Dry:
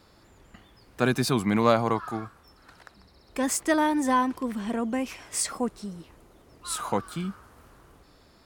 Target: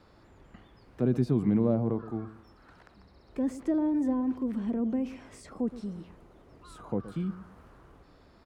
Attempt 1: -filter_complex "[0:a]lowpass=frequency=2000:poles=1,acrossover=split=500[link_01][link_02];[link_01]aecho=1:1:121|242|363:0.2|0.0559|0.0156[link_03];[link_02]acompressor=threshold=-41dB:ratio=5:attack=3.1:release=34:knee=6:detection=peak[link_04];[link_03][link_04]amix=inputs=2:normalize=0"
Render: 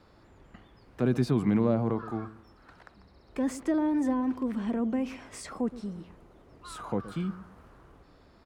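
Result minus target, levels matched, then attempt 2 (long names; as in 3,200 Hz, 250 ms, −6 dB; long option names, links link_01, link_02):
downward compressor: peak gain reduction −9.5 dB
-filter_complex "[0:a]lowpass=frequency=2000:poles=1,acrossover=split=500[link_01][link_02];[link_01]aecho=1:1:121|242|363:0.2|0.0559|0.0156[link_03];[link_02]acompressor=threshold=-53dB:ratio=5:attack=3.1:release=34:knee=6:detection=peak[link_04];[link_03][link_04]amix=inputs=2:normalize=0"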